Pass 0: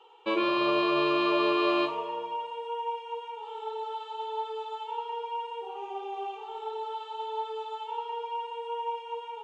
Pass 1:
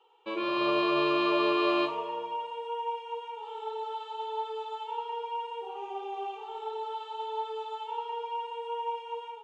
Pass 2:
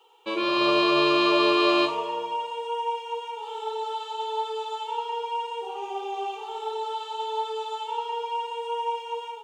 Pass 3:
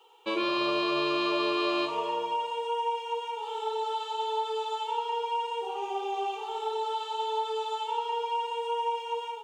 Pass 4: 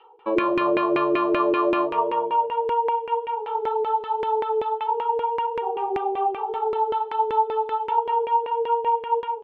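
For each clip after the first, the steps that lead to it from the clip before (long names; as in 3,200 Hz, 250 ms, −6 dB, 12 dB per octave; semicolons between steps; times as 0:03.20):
automatic gain control gain up to 8 dB; level −8.5 dB
bass and treble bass 0 dB, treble +12 dB; level +5 dB
downward compressor 4 to 1, threshold −25 dBFS, peak gain reduction 7.5 dB
downsampling to 11,025 Hz; auto-filter low-pass saw down 5.2 Hz 370–2,200 Hz; level +4.5 dB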